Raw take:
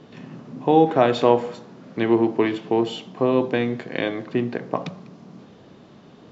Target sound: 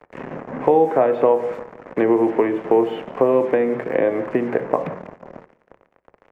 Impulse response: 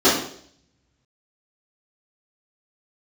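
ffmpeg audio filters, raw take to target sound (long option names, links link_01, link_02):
-filter_complex "[0:a]acrusher=bits=5:mix=0:aa=0.5,acrossover=split=4000[link_01][link_02];[link_02]acompressor=threshold=-48dB:ratio=4:attack=1:release=60[link_03];[link_01][link_03]amix=inputs=2:normalize=0,equalizer=frequency=500:width_type=o:width=1:gain=9,equalizer=frequency=1000:width_type=o:width=1:gain=4,equalizer=frequency=2000:width_type=o:width=1:gain=9,equalizer=frequency=4000:width_type=o:width=1:gain=-11,acrossover=split=96|1000|3700[link_04][link_05][link_06][link_07];[link_04]acompressor=threshold=-56dB:ratio=4[link_08];[link_05]acompressor=threshold=-18dB:ratio=4[link_09];[link_06]acompressor=threshold=-34dB:ratio=4[link_10];[link_07]acompressor=threshold=-53dB:ratio=4[link_11];[link_08][link_09][link_10][link_11]amix=inputs=4:normalize=0,highshelf=frequency=3700:gain=-10,bandreject=frequency=60:width_type=h:width=6,bandreject=frequency=120:width_type=h:width=6,bandreject=frequency=180:width_type=h:width=6,aecho=1:1:170|340|510:0.0708|0.0354|0.0177,asplit=2[link_12][link_13];[1:a]atrim=start_sample=2205,asetrate=61740,aresample=44100[link_14];[link_13][link_14]afir=irnorm=-1:irlink=0,volume=-39dB[link_15];[link_12][link_15]amix=inputs=2:normalize=0,volume=3dB"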